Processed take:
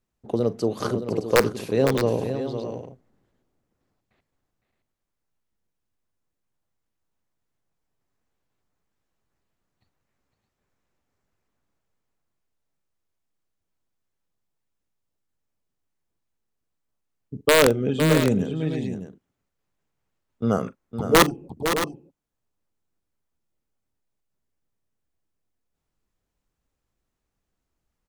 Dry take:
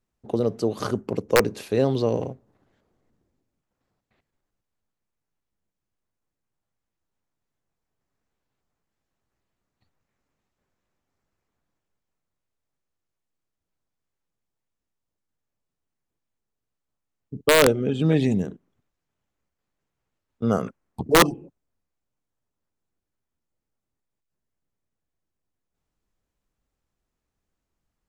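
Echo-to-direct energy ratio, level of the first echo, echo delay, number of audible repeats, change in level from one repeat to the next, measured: −6.5 dB, −19.0 dB, 42 ms, 3, repeats not evenly spaced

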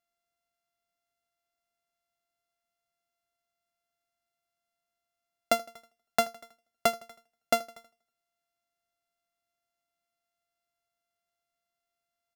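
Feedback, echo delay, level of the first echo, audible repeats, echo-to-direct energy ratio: 54%, 80 ms, −21.5 dB, 3, −20.0 dB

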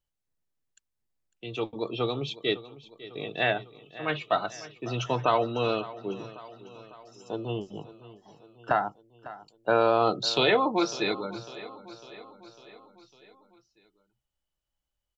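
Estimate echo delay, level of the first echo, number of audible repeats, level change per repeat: 551 ms, −17.0 dB, 4, −4.5 dB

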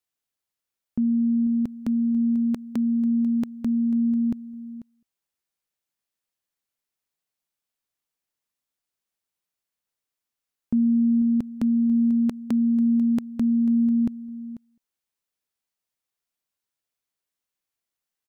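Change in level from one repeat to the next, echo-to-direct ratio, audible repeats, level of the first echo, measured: repeats not evenly spaced, −15.5 dB, 1, −15.5 dB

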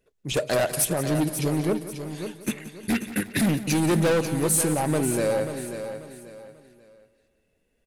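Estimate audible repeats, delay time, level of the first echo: 8, 178 ms, −14.5 dB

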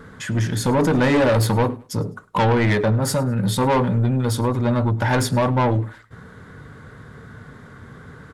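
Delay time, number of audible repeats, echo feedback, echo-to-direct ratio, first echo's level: 103 ms, 2, 33%, −22.5 dB, −23.0 dB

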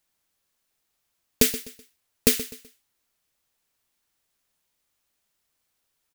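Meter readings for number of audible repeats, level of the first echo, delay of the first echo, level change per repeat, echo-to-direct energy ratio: 3, −14.5 dB, 126 ms, −9.5 dB, −14.0 dB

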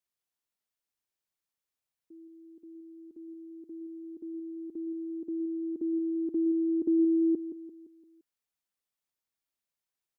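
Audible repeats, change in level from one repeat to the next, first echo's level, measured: 4, −6.5 dB, −11.0 dB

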